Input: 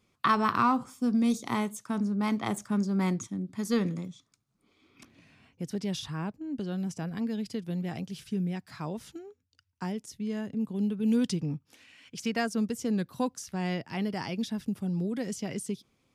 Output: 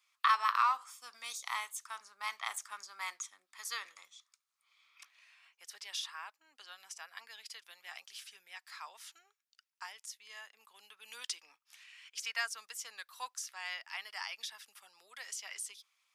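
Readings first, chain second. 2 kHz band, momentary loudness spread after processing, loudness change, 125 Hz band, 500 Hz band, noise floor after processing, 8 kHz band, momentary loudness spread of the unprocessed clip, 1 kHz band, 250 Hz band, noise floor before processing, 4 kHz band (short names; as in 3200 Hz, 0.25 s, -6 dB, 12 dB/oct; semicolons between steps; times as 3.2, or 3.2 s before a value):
-1.0 dB, 19 LU, -8.0 dB, under -40 dB, -25.5 dB, under -85 dBFS, 0.0 dB, 11 LU, -3.5 dB, under -40 dB, -75 dBFS, 0.0 dB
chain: HPF 1100 Hz 24 dB/oct; notch 1500 Hz, Q 19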